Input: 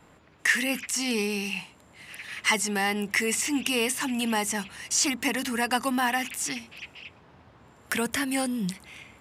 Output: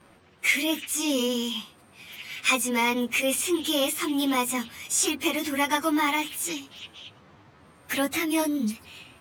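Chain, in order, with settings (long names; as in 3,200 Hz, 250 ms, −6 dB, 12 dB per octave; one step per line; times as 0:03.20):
phase-vocoder pitch shift without resampling +3 semitones
level +4 dB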